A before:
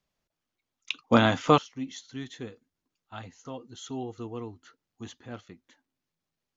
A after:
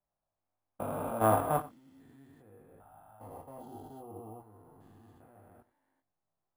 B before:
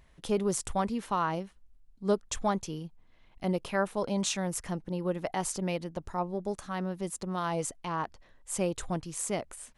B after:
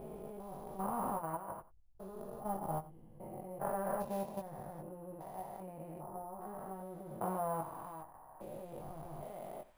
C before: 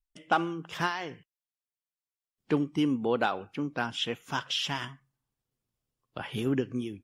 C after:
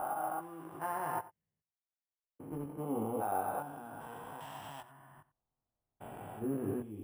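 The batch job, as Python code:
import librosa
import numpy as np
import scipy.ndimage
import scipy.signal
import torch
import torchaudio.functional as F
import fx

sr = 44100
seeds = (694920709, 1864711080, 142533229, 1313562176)

y = fx.spec_steps(x, sr, hold_ms=400)
y = fx.curve_eq(y, sr, hz=(420.0, 740.0, 3500.0), db=(0, 11, -15))
y = fx.level_steps(y, sr, step_db=11)
y = fx.chorus_voices(y, sr, voices=6, hz=0.62, base_ms=20, depth_ms=1.8, mix_pct=40)
y = y + 10.0 ** (-18.0 / 20.0) * np.pad(y, (int(91 * sr / 1000.0), 0))[:len(y)]
y = np.repeat(y[::4], 4)[:len(y)]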